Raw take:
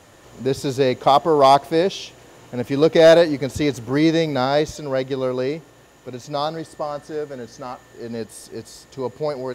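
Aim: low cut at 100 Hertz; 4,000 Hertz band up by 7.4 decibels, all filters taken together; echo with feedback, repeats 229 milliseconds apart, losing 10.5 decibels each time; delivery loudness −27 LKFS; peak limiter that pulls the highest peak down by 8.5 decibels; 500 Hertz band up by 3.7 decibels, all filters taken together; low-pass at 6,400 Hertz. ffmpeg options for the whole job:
ffmpeg -i in.wav -af "highpass=100,lowpass=6400,equalizer=frequency=500:width_type=o:gain=4.5,equalizer=frequency=4000:width_type=o:gain=9,alimiter=limit=-8dB:level=0:latency=1,aecho=1:1:229|458|687:0.299|0.0896|0.0269,volume=-6.5dB" out.wav

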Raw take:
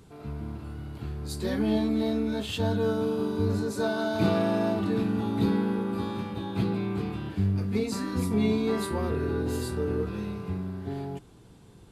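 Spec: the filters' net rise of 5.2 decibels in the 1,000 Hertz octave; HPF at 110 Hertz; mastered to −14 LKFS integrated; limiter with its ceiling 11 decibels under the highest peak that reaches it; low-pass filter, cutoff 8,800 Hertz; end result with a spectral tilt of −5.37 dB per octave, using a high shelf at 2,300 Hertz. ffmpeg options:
ffmpeg -i in.wav -af "highpass=110,lowpass=8800,equalizer=frequency=1000:width_type=o:gain=6,highshelf=frequency=2300:gain=3.5,volume=17dB,alimiter=limit=-4.5dB:level=0:latency=1" out.wav

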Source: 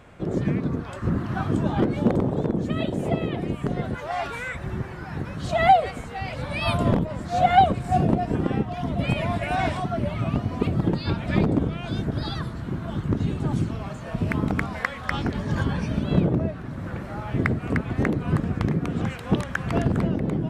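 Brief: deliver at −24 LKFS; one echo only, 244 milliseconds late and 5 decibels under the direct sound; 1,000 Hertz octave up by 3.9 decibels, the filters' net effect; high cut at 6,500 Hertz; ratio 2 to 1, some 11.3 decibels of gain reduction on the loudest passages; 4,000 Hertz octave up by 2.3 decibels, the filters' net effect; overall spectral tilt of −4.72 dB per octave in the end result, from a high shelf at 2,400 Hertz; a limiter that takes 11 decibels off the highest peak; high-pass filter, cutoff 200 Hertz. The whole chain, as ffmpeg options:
ffmpeg -i in.wav -af "highpass=200,lowpass=6500,equalizer=frequency=1000:width_type=o:gain=6.5,highshelf=frequency=2400:gain=-3.5,equalizer=frequency=4000:width_type=o:gain=6,acompressor=threshold=-28dB:ratio=2,alimiter=limit=-20.5dB:level=0:latency=1,aecho=1:1:244:0.562,volume=6.5dB" out.wav

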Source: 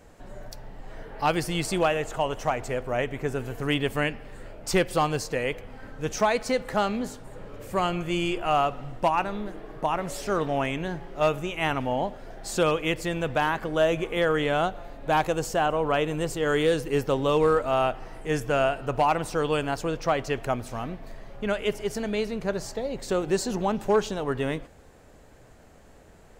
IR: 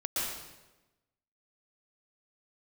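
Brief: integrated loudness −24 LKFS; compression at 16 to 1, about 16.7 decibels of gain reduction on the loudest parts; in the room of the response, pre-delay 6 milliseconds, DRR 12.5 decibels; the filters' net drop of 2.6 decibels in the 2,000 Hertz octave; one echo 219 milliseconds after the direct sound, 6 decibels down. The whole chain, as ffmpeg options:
-filter_complex "[0:a]equalizer=frequency=2000:width_type=o:gain=-3.5,acompressor=threshold=-35dB:ratio=16,aecho=1:1:219:0.501,asplit=2[link_01][link_02];[1:a]atrim=start_sample=2205,adelay=6[link_03];[link_02][link_03]afir=irnorm=-1:irlink=0,volume=-19dB[link_04];[link_01][link_04]amix=inputs=2:normalize=0,volume=15dB"

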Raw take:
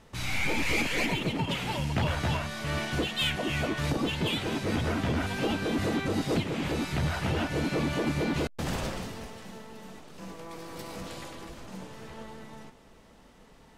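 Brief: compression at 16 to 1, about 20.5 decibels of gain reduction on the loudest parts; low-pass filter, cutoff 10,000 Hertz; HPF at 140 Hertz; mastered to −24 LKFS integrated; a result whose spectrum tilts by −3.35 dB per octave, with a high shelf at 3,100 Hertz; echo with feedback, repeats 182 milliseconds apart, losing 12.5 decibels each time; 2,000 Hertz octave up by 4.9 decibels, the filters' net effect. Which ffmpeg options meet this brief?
ffmpeg -i in.wav -af "highpass=140,lowpass=10000,equalizer=frequency=2000:width_type=o:gain=3,highshelf=frequency=3100:gain=8,acompressor=threshold=-41dB:ratio=16,aecho=1:1:182|364|546:0.237|0.0569|0.0137,volume=19.5dB" out.wav

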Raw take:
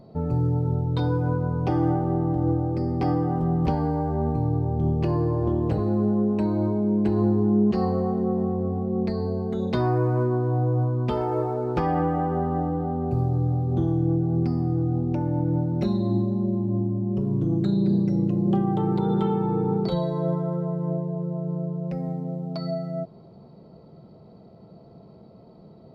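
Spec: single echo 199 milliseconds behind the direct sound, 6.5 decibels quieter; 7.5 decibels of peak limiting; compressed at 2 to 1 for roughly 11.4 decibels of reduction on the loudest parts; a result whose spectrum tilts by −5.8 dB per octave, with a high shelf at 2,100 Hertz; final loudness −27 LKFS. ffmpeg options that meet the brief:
ffmpeg -i in.wav -af "highshelf=frequency=2100:gain=4.5,acompressor=threshold=-40dB:ratio=2,alimiter=level_in=6.5dB:limit=-24dB:level=0:latency=1,volume=-6.5dB,aecho=1:1:199:0.473,volume=11dB" out.wav

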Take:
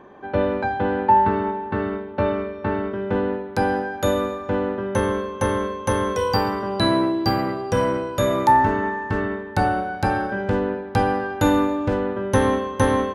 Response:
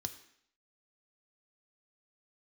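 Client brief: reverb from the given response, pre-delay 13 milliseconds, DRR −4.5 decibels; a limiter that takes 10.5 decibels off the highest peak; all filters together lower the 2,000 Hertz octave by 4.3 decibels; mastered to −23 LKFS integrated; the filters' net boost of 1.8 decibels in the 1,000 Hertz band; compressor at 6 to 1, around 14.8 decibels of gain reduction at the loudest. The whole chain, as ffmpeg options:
-filter_complex "[0:a]equalizer=frequency=1000:width_type=o:gain=3.5,equalizer=frequency=2000:width_type=o:gain=-7.5,acompressor=threshold=-26dB:ratio=6,alimiter=limit=-24dB:level=0:latency=1,asplit=2[link_01][link_02];[1:a]atrim=start_sample=2205,adelay=13[link_03];[link_02][link_03]afir=irnorm=-1:irlink=0,volume=6.5dB[link_04];[link_01][link_04]amix=inputs=2:normalize=0,volume=2dB"

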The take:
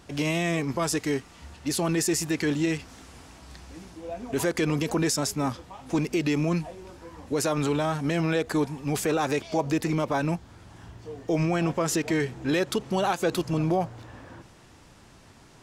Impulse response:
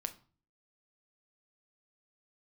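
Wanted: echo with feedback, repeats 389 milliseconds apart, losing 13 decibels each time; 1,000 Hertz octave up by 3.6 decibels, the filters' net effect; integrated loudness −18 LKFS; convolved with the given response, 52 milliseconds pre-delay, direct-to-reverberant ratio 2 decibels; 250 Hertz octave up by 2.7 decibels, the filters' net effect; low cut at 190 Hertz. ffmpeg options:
-filter_complex "[0:a]highpass=190,equalizer=frequency=250:width_type=o:gain=5,equalizer=frequency=1000:width_type=o:gain=4.5,aecho=1:1:389|778|1167:0.224|0.0493|0.0108,asplit=2[link_01][link_02];[1:a]atrim=start_sample=2205,adelay=52[link_03];[link_02][link_03]afir=irnorm=-1:irlink=0,volume=-1dB[link_04];[link_01][link_04]amix=inputs=2:normalize=0,volume=4.5dB"

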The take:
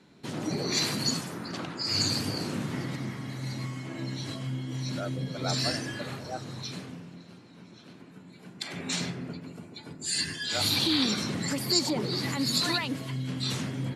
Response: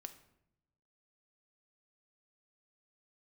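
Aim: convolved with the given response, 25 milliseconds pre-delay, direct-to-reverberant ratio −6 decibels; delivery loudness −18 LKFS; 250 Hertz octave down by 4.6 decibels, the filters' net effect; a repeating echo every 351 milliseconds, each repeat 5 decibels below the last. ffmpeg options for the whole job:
-filter_complex "[0:a]equalizer=frequency=250:width_type=o:gain=-6,aecho=1:1:351|702|1053|1404|1755|2106|2457:0.562|0.315|0.176|0.0988|0.0553|0.031|0.0173,asplit=2[link_01][link_02];[1:a]atrim=start_sample=2205,adelay=25[link_03];[link_02][link_03]afir=irnorm=-1:irlink=0,volume=11.5dB[link_04];[link_01][link_04]amix=inputs=2:normalize=0,volume=4dB"

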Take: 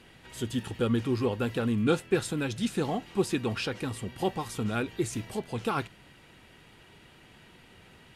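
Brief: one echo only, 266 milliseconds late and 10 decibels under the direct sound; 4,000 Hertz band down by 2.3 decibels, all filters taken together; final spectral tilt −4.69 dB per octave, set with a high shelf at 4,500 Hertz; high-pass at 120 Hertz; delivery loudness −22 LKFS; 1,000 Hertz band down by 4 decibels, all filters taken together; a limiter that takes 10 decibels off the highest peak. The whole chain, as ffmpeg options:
ffmpeg -i in.wav -af "highpass=120,equalizer=frequency=1000:width_type=o:gain=-6,equalizer=frequency=4000:width_type=o:gain=-7,highshelf=frequency=4500:gain=8.5,alimiter=limit=-23.5dB:level=0:latency=1,aecho=1:1:266:0.316,volume=12dB" out.wav

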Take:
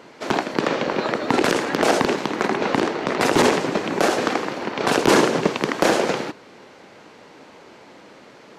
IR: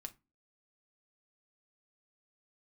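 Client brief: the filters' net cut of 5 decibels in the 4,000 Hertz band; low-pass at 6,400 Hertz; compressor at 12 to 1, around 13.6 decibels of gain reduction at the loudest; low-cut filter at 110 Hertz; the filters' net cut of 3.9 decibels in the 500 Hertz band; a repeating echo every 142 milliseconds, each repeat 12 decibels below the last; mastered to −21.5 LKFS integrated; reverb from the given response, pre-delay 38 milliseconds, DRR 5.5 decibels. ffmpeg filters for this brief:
-filter_complex "[0:a]highpass=110,lowpass=6400,equalizer=frequency=500:width_type=o:gain=-5,equalizer=frequency=4000:width_type=o:gain=-6,acompressor=threshold=-29dB:ratio=12,aecho=1:1:142|284|426:0.251|0.0628|0.0157,asplit=2[link_01][link_02];[1:a]atrim=start_sample=2205,adelay=38[link_03];[link_02][link_03]afir=irnorm=-1:irlink=0,volume=-1dB[link_04];[link_01][link_04]amix=inputs=2:normalize=0,volume=11dB"

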